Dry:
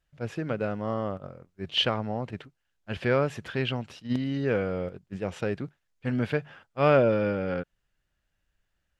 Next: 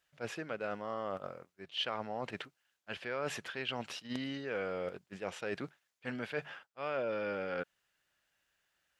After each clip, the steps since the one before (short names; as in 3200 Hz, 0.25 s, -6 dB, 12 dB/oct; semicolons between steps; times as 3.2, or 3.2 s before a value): HPF 810 Hz 6 dB/oct; reverse; compressor 5:1, threshold -40 dBFS, peak gain reduction 17.5 dB; reverse; gain +5 dB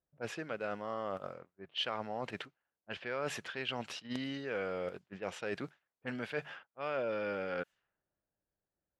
low-pass opened by the level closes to 460 Hz, open at -37 dBFS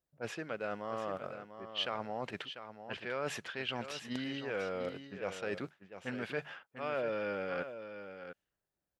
echo 0.695 s -10 dB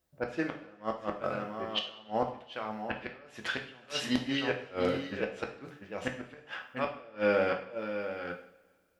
flipped gate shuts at -27 dBFS, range -29 dB; two-slope reverb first 0.5 s, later 2 s, from -21 dB, DRR 2.5 dB; gain +9 dB